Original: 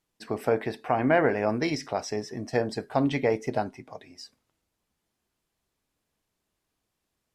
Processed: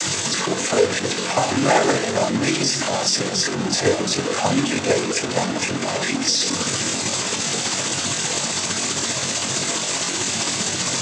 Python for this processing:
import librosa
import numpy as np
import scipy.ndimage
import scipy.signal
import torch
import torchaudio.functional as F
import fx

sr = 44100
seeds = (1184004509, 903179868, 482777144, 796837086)

p1 = fx.delta_mod(x, sr, bps=64000, step_db=-22.5)
p2 = fx.high_shelf(p1, sr, hz=5400.0, db=11.0)
p3 = p2 + fx.echo_stepped(p2, sr, ms=538, hz=180.0, octaves=0.7, feedback_pct=70, wet_db=-11.0, dry=0)
p4 = fx.noise_vocoder(p3, sr, seeds[0], bands=16)
p5 = fx.stretch_grains(p4, sr, factor=1.5, grain_ms=131.0)
y = p5 * librosa.db_to_amplitude(6.0)